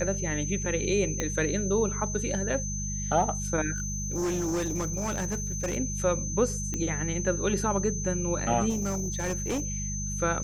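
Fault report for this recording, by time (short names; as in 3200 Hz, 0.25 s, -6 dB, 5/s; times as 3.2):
hum 50 Hz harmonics 4 -34 dBFS
tone 6200 Hz -34 dBFS
1.2 pop -14 dBFS
3.76–5.78 clipped -25.5 dBFS
6.74 pop -18 dBFS
8.69–9.66 clipped -25.5 dBFS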